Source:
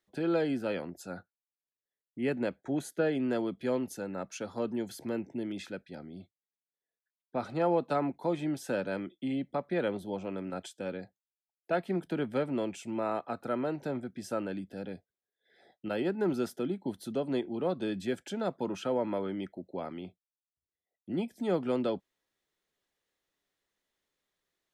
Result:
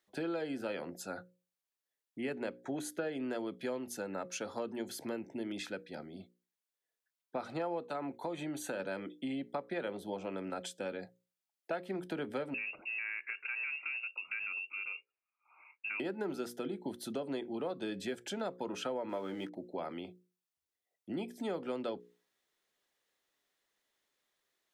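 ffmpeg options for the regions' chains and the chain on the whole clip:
-filter_complex "[0:a]asettb=1/sr,asplit=3[a][b][c];[a]atrim=end=7.814[d];[b]atrim=start=7.81:end=8.8,asetpts=PTS-STARTPTS,afade=t=in:d=0.004:c=qsin,afade=t=out:st=0.986:d=0.004:c=qsin,acompressor=threshold=-33dB:ratio=2:attack=3.2:release=140:knee=1:detection=peak,asuperstop=centerf=5200:order=20:qfactor=6.5[e];[c]atrim=start=8.796[f];[d][e]acrossfade=d=0.004:c1=hsin:c2=qsin[g];[g][f]acrossfade=d=0.004:c1=qsin:c2=hsin,asettb=1/sr,asplit=3[h][i][j];[h]atrim=end=12.544[k];[i]atrim=start=12.54:end=16,asetpts=PTS-STARTPTS,afade=t=in:d=0.004:c=qsin,afade=t=out:st=3.456:d=0.004:c=qsin,acompressor=threshold=-39dB:ratio=2.5:attack=3.2:release=140:knee=1:detection=peak,lowpass=f=2.5k:t=q:w=0.5098,lowpass=f=2.5k:t=q:w=0.6013,lowpass=f=2.5k:t=q:w=0.9,lowpass=f=2.5k:t=q:w=2.563,afreqshift=-2900[l];[j]atrim=start=15.996[m];[k][l]acrossfade=d=0.004:c1=hsin:c2=qsin[n];[n][m]acrossfade=d=0.004:c1=qsin:c2=hsin,asettb=1/sr,asplit=3[o][p][q];[o]atrim=end=19.094[r];[p]atrim=start=19.09:end=19.55,asetpts=PTS-STARTPTS,afade=t=in:d=0.004:c=qsin,afade=t=out:st=0.456:d=0.004:c=qsin,highpass=60,aeval=exprs='sgn(val(0))*max(abs(val(0))-0.00106,0)':c=same,asplit=2[s][t];[t]adelay=17,volume=-11dB[u];[s][u]amix=inputs=2:normalize=0,atrim=end_sample=20286[v];[q]atrim=start=19.546[w];[r][v]acrossfade=d=0.004:c1=hsin:c2=qsin[x];[x][w]acrossfade=d=0.004:c1=qsin:c2=hsin,lowshelf=f=210:g=-10.5,bandreject=f=60:t=h:w=6,bandreject=f=120:t=h:w=6,bandreject=f=180:t=h:w=6,bandreject=f=240:t=h:w=6,bandreject=f=300:t=h:w=6,bandreject=f=360:t=h:w=6,bandreject=f=420:t=h:w=6,bandreject=f=480:t=h:w=6,bandreject=f=540:t=h:w=6,acompressor=threshold=-38dB:ratio=4,volume=3dB"

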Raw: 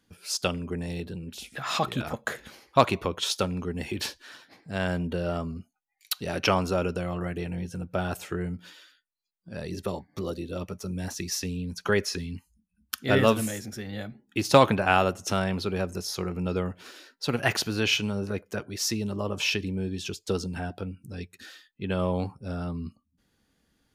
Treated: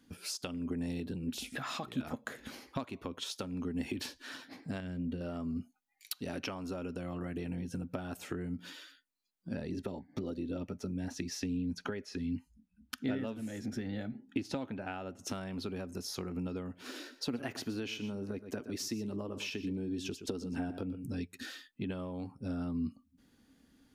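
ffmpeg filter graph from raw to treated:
-filter_complex "[0:a]asettb=1/sr,asplit=3[a][b][c];[a]atrim=end=4.804[d];[b]atrim=start=4.8:end=5.21,asetpts=PTS-STARTPTS,afade=t=in:d=0.004:c=qsin,afade=t=out:st=0.406:d=0.004:c=qsin,lowpass=f=2.5k:p=1,equalizer=f=900:t=o:w=1.9:g=-14,bandreject=f=67.36:t=h:w=4,bandreject=f=134.72:t=h:w=4,bandreject=f=202.08:t=h:w=4,bandreject=f=269.44:t=h:w=4,bandreject=f=336.8:t=h:w=4,bandreject=f=404.16:t=h:w=4,bandreject=f=471.52:t=h:w=4,bandreject=f=538.88:t=h:w=4,bandreject=f=606.24:t=h:w=4,bandreject=f=673.6:t=h:w=4,bandreject=f=740.96:t=h:w=4[e];[c]atrim=start=5.206[f];[d][e]acrossfade=d=0.004:c1=hsin:c2=qsin[g];[g][f]acrossfade=d=0.004:c1=qsin:c2=hsin,asettb=1/sr,asplit=3[h][i][j];[h]atrim=end=9.544[k];[i]atrim=start=9.54:end=15.19,asetpts=PTS-STARTPTS,afade=t=in:d=0.004:c=qsin,afade=t=out:st=5.646:d=0.004:c=qsin,aemphasis=mode=reproduction:type=50kf,bandreject=f=1.1k:w=5.9[l];[j]atrim=start=15.186[m];[k][l]acrossfade=d=0.004:c1=hsin:c2=qsin[n];[n][m]acrossfade=d=0.004:c1=qsin:c2=hsin,asettb=1/sr,asplit=3[o][p][q];[o]atrim=end=16.894[r];[p]atrim=start=16.89:end=21.06,asetpts=PTS-STARTPTS,afade=t=in:d=0.004:c=qsin,afade=t=out:st=4.166:d=0.004:c=qsin,equalizer=f=380:t=o:w=1.6:g=4.5,aecho=1:1:120:0.188,atrim=end_sample=183897[s];[q]atrim=start=21.056[t];[r][s]acrossfade=d=0.004:c1=hsin:c2=qsin[u];[u][t]acrossfade=d=0.004:c1=qsin:c2=hsin,acompressor=threshold=-38dB:ratio=16,equalizer=f=260:w=3.4:g=12,volume=1dB"

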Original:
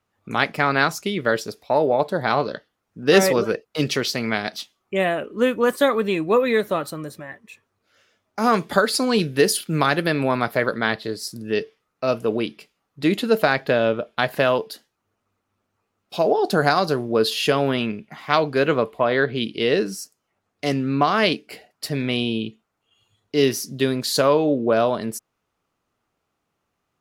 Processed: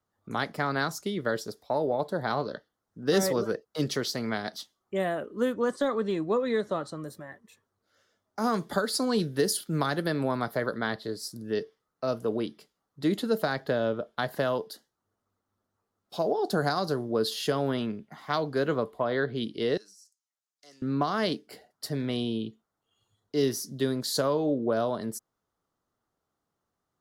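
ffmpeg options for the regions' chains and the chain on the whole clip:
-filter_complex "[0:a]asettb=1/sr,asplit=3[a][b][c];[a]atrim=end=5.534[d];[b]atrim=start=5.53:end=7.01,asetpts=PTS-STARTPTS,afade=t=in:d=0.004:c=qsin,afade=t=out:st=1.476:d=0.004:c=qsin,lowpass=f=7.9k:w=0.5412,lowpass=f=7.9k:w=1.3066,deesser=0.75[e];[c]atrim=start=7.006[f];[d][e]acrossfade=d=0.004:c1=hsin:c2=qsin[g];[g][f]acrossfade=d=0.004:c1=qsin:c2=hsin,asettb=1/sr,asplit=3[h][i][j];[h]atrim=end=19.774[k];[i]atrim=start=19.77:end=20.82,asetpts=PTS-STARTPTS,afade=t=in:d=0.004:c=qsin,afade=t=out:st=1.046:d=0.004:c=qsin,deesser=1,bandpass=f=6.8k:t=q:w=1.3[l];[j]atrim=start=20.816[m];[k][l]acrossfade=d=0.004:c1=hsin:c2=qsin[n];[n][m]acrossfade=d=0.004:c1=qsin:c2=hsin,equalizer=f=2.5k:t=o:w=0.46:g=-13.5,acrossover=split=310|3000[o][p][q];[p]acompressor=threshold=-20dB:ratio=2.5[r];[o][r][q]amix=inputs=3:normalize=0,volume=-6dB"

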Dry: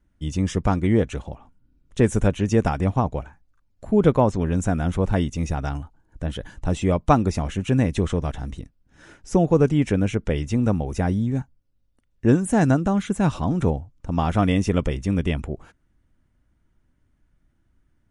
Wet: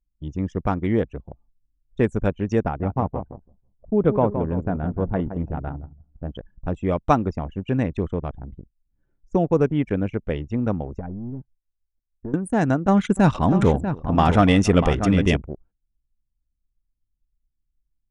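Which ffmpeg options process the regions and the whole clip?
-filter_complex "[0:a]asettb=1/sr,asplit=3[a][b][c];[a]atrim=end=2.634[d];[b]atrim=start=2.63:end=6.35,asetpts=PTS-STARTPTS,afade=t=in:d=0.004:c=qsin,afade=t=out:st=3.716:d=0.004:c=qsin,lowpass=f=1.3k:p=1,aecho=1:1:166|332|498|664|830:0.355|0.156|0.0687|0.0302|0.0133,atrim=end_sample=164052[e];[c]atrim=start=6.346[f];[d][e]acrossfade=d=0.004:c1=hsin:c2=qsin[g];[g][f]acrossfade=d=0.004:c1=qsin:c2=hsin,asettb=1/sr,asplit=3[h][i][j];[h]atrim=end=10.994[k];[i]atrim=start=10.99:end=12.34,asetpts=PTS-STARTPTS,afade=t=in:d=0.004:c=qsin,afade=t=out:st=1.346:d=0.004:c=qsin,aeval=exprs='if(lt(val(0),0),0.447*val(0),val(0))':c=same,lowpass=2.3k,acompressor=threshold=-23dB:ratio=10:attack=3.2:release=140:knee=1:detection=peak[l];[j]atrim=start=12.336[m];[k][l]acrossfade=d=0.004:c1=hsin:c2=qsin[n];[n][m]acrossfade=d=0.004:c1=qsin:c2=hsin,asettb=1/sr,asplit=3[o][p][q];[o]atrim=end=12.884[r];[p]atrim=start=12.88:end=15.37,asetpts=PTS-STARTPTS,afade=t=in:d=0.004:c=qsin,afade=t=out:st=2.486:d=0.004:c=qsin,acontrast=89,aecho=1:1:288|641:0.106|0.355,atrim=end_sample=109809[s];[q]atrim=start=15.366[t];[r][s]acrossfade=d=0.004:c1=hsin:c2=qsin[u];[u][t]acrossfade=d=0.004:c1=qsin:c2=hsin,anlmdn=158,lowshelf=f=200:g=-5.5"

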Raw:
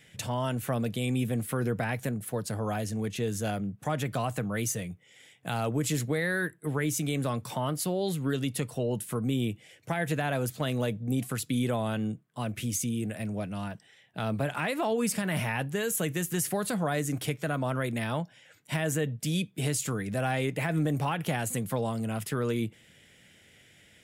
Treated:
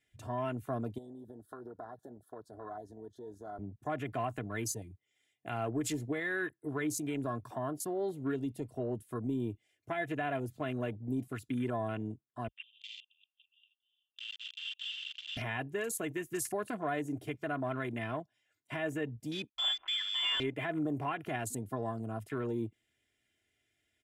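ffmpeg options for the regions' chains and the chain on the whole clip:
-filter_complex "[0:a]asettb=1/sr,asplit=3[a][b][c];[a]atrim=end=0.984[d];[b]atrim=start=0.98:end=3.59,asetpts=PTS-STARTPTS,afade=t=in:d=0.004:c=qsin,afade=t=out:st=2.606:d=0.004:c=qsin,acompressor=threshold=-32dB:ratio=6:attack=3.2:release=140:knee=1:detection=peak,asuperstop=centerf=2400:order=8:qfactor=1.4,bass=f=250:g=-14,treble=f=4k:g=-9[e];[c]atrim=start=3.586[f];[d][e]acrossfade=d=0.004:c1=hsin:c2=qsin[g];[g][f]acrossfade=d=0.004:c1=qsin:c2=hsin,asettb=1/sr,asplit=3[h][i][j];[h]atrim=end=12.484[k];[i]atrim=start=12.48:end=15.37,asetpts=PTS-STARTPTS,afade=t=in:d=0.004:c=qsin,afade=t=out:st=2.886:d=0.004:c=qsin,aeval=exprs='(mod(18.8*val(0)+1,2)-1)/18.8':c=same,asuperpass=centerf=3100:order=12:qfactor=3.1,acontrast=27[l];[j]atrim=start=15.366[m];[k][l]acrossfade=d=0.004:c1=hsin:c2=qsin[n];[n][m]acrossfade=d=0.004:c1=qsin:c2=hsin,asettb=1/sr,asplit=3[o][p][q];[o]atrim=end=19.494[r];[p]atrim=start=19.49:end=20.4,asetpts=PTS-STARTPTS,afade=t=in:d=0.004:c=qsin,afade=t=out:st=0.906:d=0.004:c=qsin,acrusher=bits=5:mix=0:aa=0.5,lowpass=f=3.1k:t=q:w=0.5098,lowpass=f=3.1k:t=q:w=0.6013,lowpass=f=3.1k:t=q:w=0.9,lowpass=f=3.1k:t=q:w=2.563,afreqshift=-3600[s];[q]atrim=start=20.396[t];[r][s]acrossfade=d=0.004:c1=hsin:c2=qsin[u];[u][t]acrossfade=d=0.004:c1=qsin:c2=hsin,aecho=1:1:2.9:0.73,afwtdn=0.0126,volume=-6.5dB"

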